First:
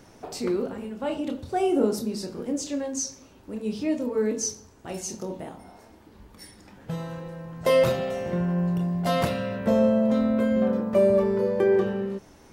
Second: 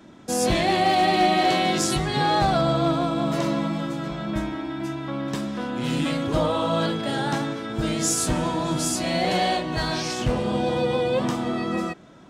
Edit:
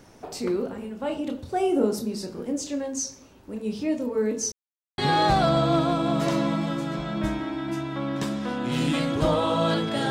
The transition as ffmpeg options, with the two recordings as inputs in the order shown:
ffmpeg -i cue0.wav -i cue1.wav -filter_complex "[0:a]apad=whole_dur=10.1,atrim=end=10.1,asplit=2[link_01][link_02];[link_01]atrim=end=4.52,asetpts=PTS-STARTPTS,afade=type=out:start_time=4.516:duration=0.004:curve=hsin[link_03];[link_02]atrim=start=4.52:end=4.98,asetpts=PTS-STARTPTS,volume=0[link_04];[1:a]atrim=start=2.1:end=7.22,asetpts=PTS-STARTPTS,afade=type=in:duration=0.004:curve=hsin[link_05];[link_03][link_04][link_05]concat=n=3:v=0:a=1" out.wav

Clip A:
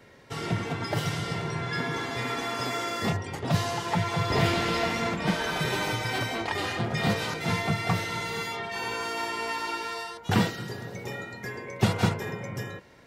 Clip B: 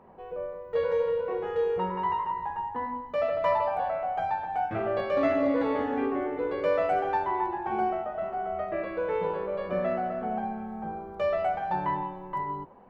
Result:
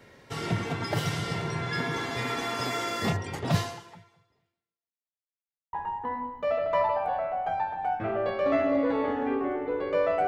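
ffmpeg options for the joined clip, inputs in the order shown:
ffmpeg -i cue0.wav -i cue1.wav -filter_complex "[0:a]apad=whole_dur=10.27,atrim=end=10.27,asplit=2[link_01][link_02];[link_01]atrim=end=5.18,asetpts=PTS-STARTPTS,afade=type=out:start_time=3.58:duration=1.6:curve=exp[link_03];[link_02]atrim=start=5.18:end=5.73,asetpts=PTS-STARTPTS,volume=0[link_04];[1:a]atrim=start=2.44:end=6.98,asetpts=PTS-STARTPTS,afade=type=in:duration=0.004:curve=hsin[link_05];[link_03][link_04][link_05]concat=n=3:v=0:a=1" out.wav

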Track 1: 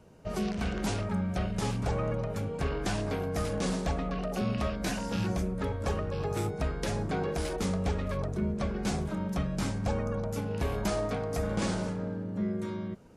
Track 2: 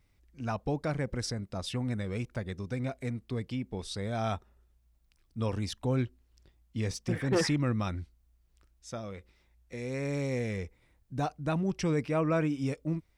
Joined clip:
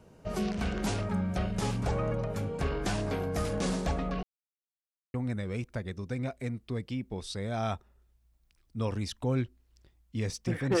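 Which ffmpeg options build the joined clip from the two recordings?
ffmpeg -i cue0.wav -i cue1.wav -filter_complex "[0:a]apad=whole_dur=10.8,atrim=end=10.8,asplit=2[link_01][link_02];[link_01]atrim=end=4.23,asetpts=PTS-STARTPTS,afade=type=out:start_time=4.226:duration=0.004:curve=hsin[link_03];[link_02]atrim=start=4.23:end=5.14,asetpts=PTS-STARTPTS,volume=0[link_04];[1:a]atrim=start=1.75:end=7.41,asetpts=PTS-STARTPTS,afade=type=in:duration=0.004:curve=hsin[link_05];[link_03][link_04][link_05]concat=n=3:v=0:a=1" out.wav

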